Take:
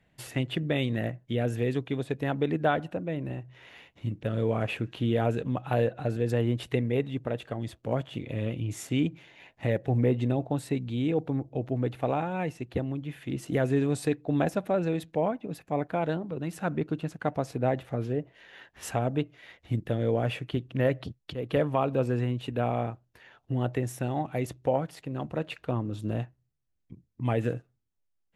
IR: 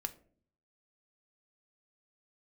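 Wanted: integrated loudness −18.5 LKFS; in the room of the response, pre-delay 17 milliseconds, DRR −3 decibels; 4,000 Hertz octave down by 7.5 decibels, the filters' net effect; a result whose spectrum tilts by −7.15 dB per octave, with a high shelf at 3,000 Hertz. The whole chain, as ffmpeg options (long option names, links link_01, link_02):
-filter_complex "[0:a]highshelf=frequency=3000:gain=-4.5,equalizer=frequency=4000:width_type=o:gain=-7.5,asplit=2[link_01][link_02];[1:a]atrim=start_sample=2205,adelay=17[link_03];[link_02][link_03]afir=irnorm=-1:irlink=0,volume=4dB[link_04];[link_01][link_04]amix=inputs=2:normalize=0,volume=6.5dB"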